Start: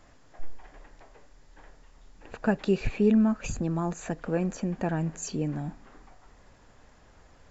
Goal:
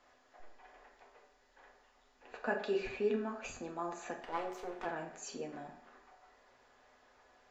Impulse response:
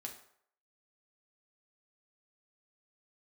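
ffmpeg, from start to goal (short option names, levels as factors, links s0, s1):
-filter_complex "[0:a]asplit=3[s0][s1][s2];[s0]afade=t=out:st=4.17:d=0.02[s3];[s1]aeval=exprs='abs(val(0))':c=same,afade=t=in:st=4.17:d=0.02,afade=t=out:st=4.84:d=0.02[s4];[s2]afade=t=in:st=4.84:d=0.02[s5];[s3][s4][s5]amix=inputs=3:normalize=0,acrossover=split=360 6400:gain=0.126 1 0.178[s6][s7][s8];[s6][s7][s8]amix=inputs=3:normalize=0[s9];[1:a]atrim=start_sample=2205[s10];[s9][s10]afir=irnorm=-1:irlink=0,volume=0.891"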